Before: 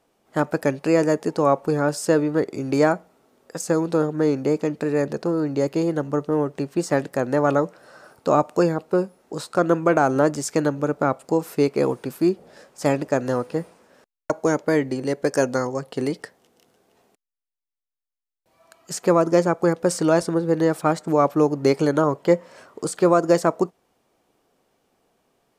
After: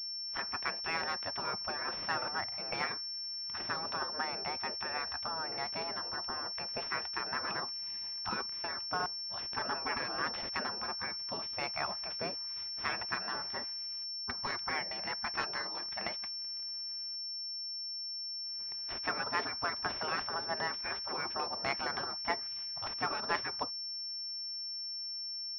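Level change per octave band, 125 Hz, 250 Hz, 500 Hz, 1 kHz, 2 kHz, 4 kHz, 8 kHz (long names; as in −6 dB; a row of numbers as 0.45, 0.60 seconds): −25.0 dB, −27.5 dB, −24.0 dB, −11.0 dB, −5.5 dB, +7.5 dB, below −30 dB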